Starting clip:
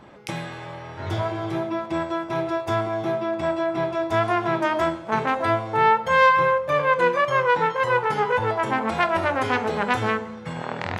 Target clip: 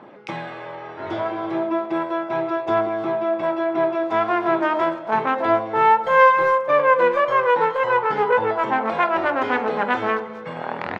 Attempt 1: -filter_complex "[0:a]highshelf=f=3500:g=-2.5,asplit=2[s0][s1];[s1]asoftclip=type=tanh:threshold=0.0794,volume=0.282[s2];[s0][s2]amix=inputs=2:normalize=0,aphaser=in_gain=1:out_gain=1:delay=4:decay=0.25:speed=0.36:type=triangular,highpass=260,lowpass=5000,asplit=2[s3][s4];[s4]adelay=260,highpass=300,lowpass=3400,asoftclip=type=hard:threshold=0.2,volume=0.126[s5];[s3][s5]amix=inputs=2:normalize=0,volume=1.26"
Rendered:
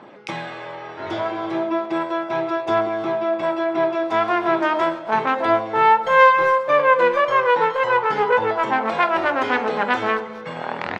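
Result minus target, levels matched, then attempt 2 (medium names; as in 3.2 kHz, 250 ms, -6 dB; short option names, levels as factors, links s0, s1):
8 kHz band +5.5 dB
-filter_complex "[0:a]highshelf=f=3500:g=-13,asplit=2[s0][s1];[s1]asoftclip=type=tanh:threshold=0.0794,volume=0.282[s2];[s0][s2]amix=inputs=2:normalize=0,aphaser=in_gain=1:out_gain=1:delay=4:decay=0.25:speed=0.36:type=triangular,highpass=260,lowpass=5000,asplit=2[s3][s4];[s4]adelay=260,highpass=300,lowpass=3400,asoftclip=type=hard:threshold=0.2,volume=0.126[s5];[s3][s5]amix=inputs=2:normalize=0,volume=1.26"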